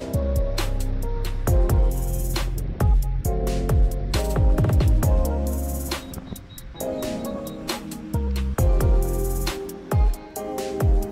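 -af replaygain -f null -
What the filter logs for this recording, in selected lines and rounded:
track_gain = +8.8 dB
track_peak = 0.208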